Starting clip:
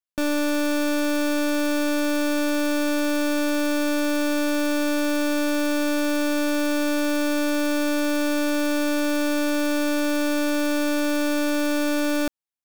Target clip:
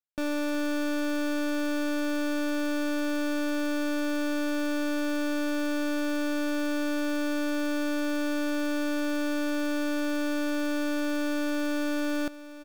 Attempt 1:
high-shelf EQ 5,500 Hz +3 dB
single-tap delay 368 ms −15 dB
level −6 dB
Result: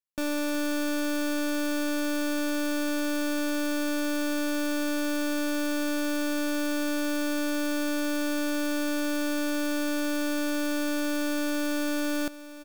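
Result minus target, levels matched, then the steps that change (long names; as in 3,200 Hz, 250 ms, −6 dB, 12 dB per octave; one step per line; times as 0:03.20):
8,000 Hz band +6.0 dB
change: high-shelf EQ 5,500 Hz −6.5 dB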